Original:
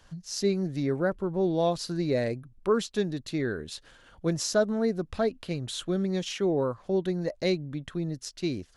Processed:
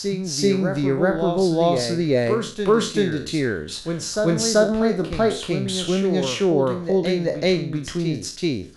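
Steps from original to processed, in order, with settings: spectral sustain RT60 0.39 s; reverse echo 384 ms -6 dB; trim +6.5 dB

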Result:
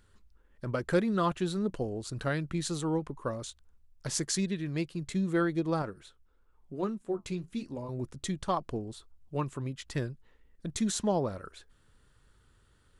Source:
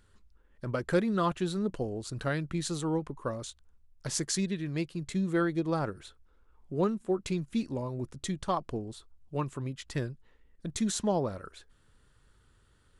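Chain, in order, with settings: 5.82–7.89 s: flange 1 Hz, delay 2.8 ms, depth 8.7 ms, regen -63%

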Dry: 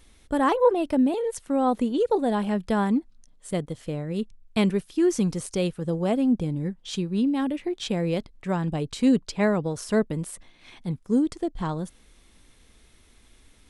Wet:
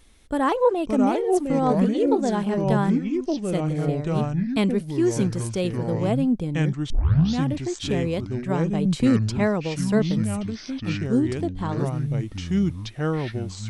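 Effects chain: ever faster or slower copies 460 ms, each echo -5 st, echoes 2; 6.90 s: tape start 0.52 s; 8.85–9.38 s: three bands compressed up and down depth 40%

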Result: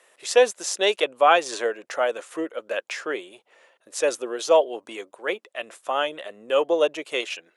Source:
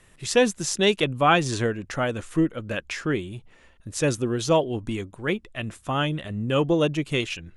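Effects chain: ladder high-pass 440 Hz, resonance 40%; trim +8 dB

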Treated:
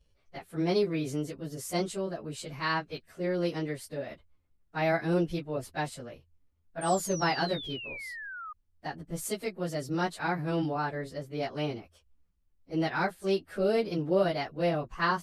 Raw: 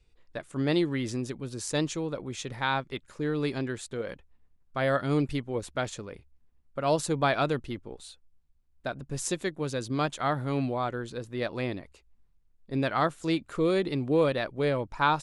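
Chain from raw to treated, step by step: frequency-domain pitch shifter +3 st; painted sound fall, 6.81–8.53 s, 1.2–8.9 kHz -41 dBFS

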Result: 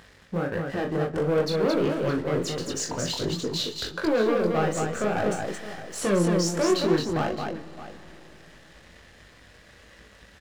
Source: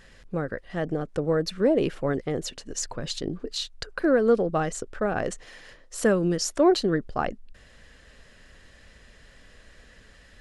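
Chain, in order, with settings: high-pass 52 Hz 24 dB/octave; treble shelf 5.5 kHz -7.5 dB; in parallel at 0 dB: compression, threshold -35 dBFS, peak gain reduction 18.5 dB; on the sum: waveshaping leveller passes 3; upward compressor, threshold -37 dBFS; chorus 1.5 Hz, delay 18.5 ms, depth 6.2 ms; multi-tap echo 40/221/615 ms -6.5/-4/-14 dB; algorithmic reverb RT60 4.1 s, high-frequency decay 0.7×, pre-delay 70 ms, DRR 16.5 dB; trim -8 dB

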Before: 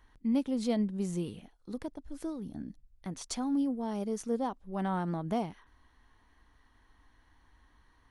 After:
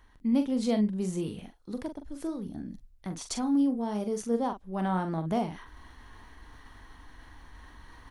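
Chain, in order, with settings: doubling 43 ms -8 dB; reverse; upward compressor, threshold -40 dBFS; reverse; trim +2.5 dB

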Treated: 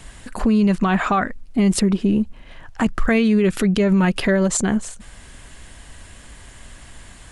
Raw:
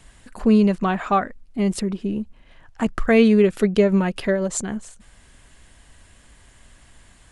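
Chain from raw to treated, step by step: dynamic bell 530 Hz, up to -6 dB, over -30 dBFS, Q 1.1; peak limiter -18.5 dBFS, peak gain reduction 11 dB; trim +9 dB

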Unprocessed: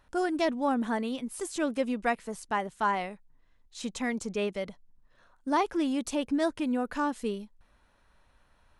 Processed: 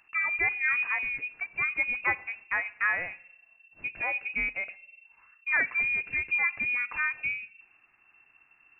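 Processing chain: frequency inversion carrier 2.7 kHz; two-slope reverb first 0.7 s, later 2.2 s, from -27 dB, DRR 16 dB

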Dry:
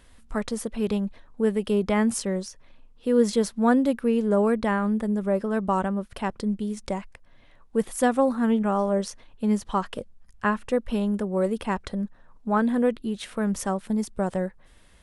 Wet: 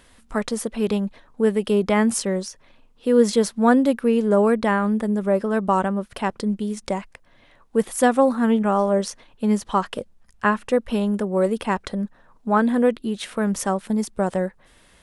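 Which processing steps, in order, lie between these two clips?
bass shelf 110 Hz -9.5 dB; trim +5 dB

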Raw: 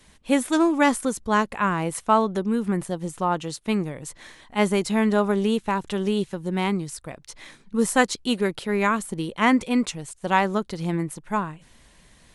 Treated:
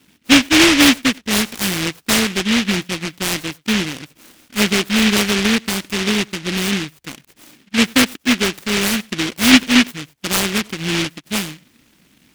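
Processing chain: band-pass 110–3100 Hz; peaking EQ 280 Hz +11.5 dB 0.93 oct; on a send at -21 dB: reverberation, pre-delay 87 ms; on the sum: delay time shaken by noise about 2.4 kHz, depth 0.41 ms

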